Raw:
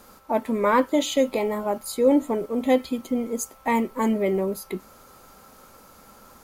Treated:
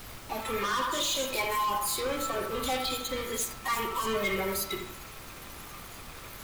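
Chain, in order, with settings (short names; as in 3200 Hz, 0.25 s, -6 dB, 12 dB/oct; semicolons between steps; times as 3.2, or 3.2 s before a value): bin magnitudes rounded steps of 30 dB; EQ curve 120 Hz 0 dB, 180 Hz -24 dB, 760 Hz -12 dB, 1200 Hz +1 dB, 1900 Hz -17 dB, 7300 Hz +3 dB; sample leveller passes 3; limiter -22.5 dBFS, peak gain reduction 9.5 dB; band shelf 2700 Hz +10 dB; soft clip -31.5 dBFS, distortion -8 dB; narrowing echo 80 ms, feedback 63%, band-pass 980 Hz, level -3.5 dB; hard clip -32 dBFS, distortion -15 dB; on a send at -2 dB: reverb RT60 0.65 s, pre-delay 3 ms; on the sum: spectral noise reduction 7 dB; added noise pink -50 dBFS; gain +4 dB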